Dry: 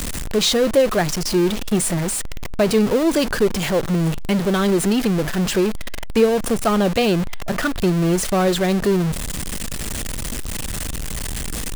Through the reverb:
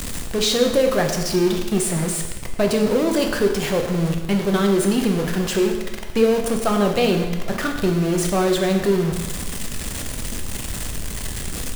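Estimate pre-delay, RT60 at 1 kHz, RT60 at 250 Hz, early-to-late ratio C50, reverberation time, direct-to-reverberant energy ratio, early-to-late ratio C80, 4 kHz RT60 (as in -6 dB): 6 ms, 1.2 s, 1.3 s, 6.0 dB, 1.2 s, 3.0 dB, 7.5 dB, 1.1 s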